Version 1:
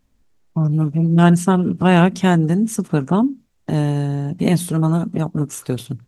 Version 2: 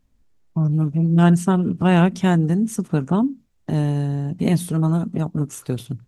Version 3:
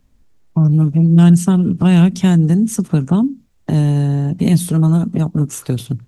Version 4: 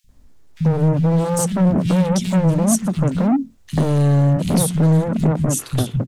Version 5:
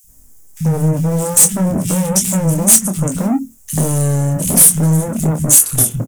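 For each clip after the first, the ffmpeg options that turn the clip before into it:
ffmpeg -i in.wav -af "lowshelf=frequency=190:gain=5,volume=-4.5dB" out.wav
ffmpeg -i in.wav -filter_complex "[0:a]acrossover=split=250|3000[link_01][link_02][link_03];[link_02]acompressor=threshold=-31dB:ratio=6[link_04];[link_01][link_04][link_03]amix=inputs=3:normalize=0,volume=7.5dB" out.wav
ffmpeg -i in.wav -filter_complex "[0:a]asplit=2[link_01][link_02];[link_02]alimiter=limit=-8.5dB:level=0:latency=1:release=331,volume=-1dB[link_03];[link_01][link_03]amix=inputs=2:normalize=0,asoftclip=type=hard:threshold=-11.5dB,acrossover=split=170|2400[link_04][link_05][link_06];[link_04]adelay=40[link_07];[link_05]adelay=90[link_08];[link_07][link_08][link_06]amix=inputs=3:normalize=0" out.wav
ffmpeg -i in.wav -filter_complex "[0:a]aexciter=amount=13.3:drive=4.6:freq=6100,asoftclip=type=tanh:threshold=-4dB,asplit=2[link_01][link_02];[link_02]adelay=26,volume=-8dB[link_03];[link_01][link_03]amix=inputs=2:normalize=0" out.wav

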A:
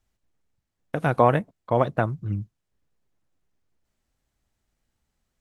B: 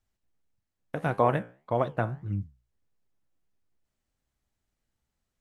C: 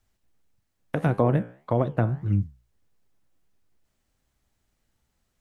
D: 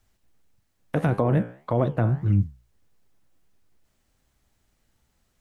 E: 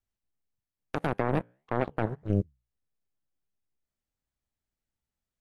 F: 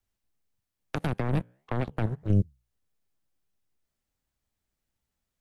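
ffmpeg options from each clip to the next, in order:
ffmpeg -i in.wav -af "flanger=delay=9.9:depth=7.2:regen=76:speed=1.7:shape=sinusoidal,volume=-1dB" out.wav
ffmpeg -i in.wav -filter_complex "[0:a]acrossover=split=430[link_01][link_02];[link_02]acompressor=threshold=-37dB:ratio=5[link_03];[link_01][link_03]amix=inputs=2:normalize=0,volume=8dB" out.wav
ffmpeg -i in.wav -af "alimiter=limit=-17dB:level=0:latency=1:release=12,volume=4.5dB" out.wav
ffmpeg -i in.wav -af "aeval=exprs='0.251*(cos(1*acos(clip(val(0)/0.251,-1,1)))-cos(1*PI/2))+0.0891*(cos(3*acos(clip(val(0)/0.251,-1,1)))-cos(3*PI/2))+0.00224*(cos(7*acos(clip(val(0)/0.251,-1,1)))-cos(7*PI/2))':channel_layout=same,volume=-3dB" out.wav
ffmpeg -i in.wav -filter_complex "[0:a]acrossover=split=210|3000[link_01][link_02][link_03];[link_02]acompressor=threshold=-40dB:ratio=3[link_04];[link_01][link_04][link_03]amix=inputs=3:normalize=0,volume=5.5dB" out.wav

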